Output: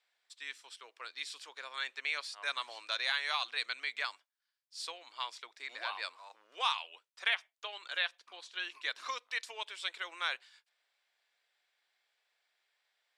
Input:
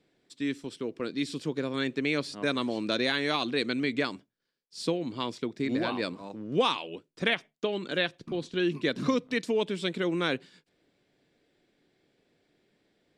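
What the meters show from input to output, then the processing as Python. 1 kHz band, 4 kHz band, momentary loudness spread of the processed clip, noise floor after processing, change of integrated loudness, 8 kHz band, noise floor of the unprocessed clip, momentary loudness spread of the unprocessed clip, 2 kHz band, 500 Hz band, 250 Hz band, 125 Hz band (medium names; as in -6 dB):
-4.5 dB, -3.0 dB, 13 LU, under -85 dBFS, -7.0 dB, -3.0 dB, -79 dBFS, 8 LU, -3.0 dB, -21.5 dB, under -35 dB, under -40 dB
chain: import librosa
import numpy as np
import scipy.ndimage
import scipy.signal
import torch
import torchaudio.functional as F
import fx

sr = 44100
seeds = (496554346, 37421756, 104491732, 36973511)

y = scipy.signal.sosfilt(scipy.signal.butter(4, 860.0, 'highpass', fs=sr, output='sos'), x)
y = F.gain(torch.from_numpy(y), -3.0).numpy()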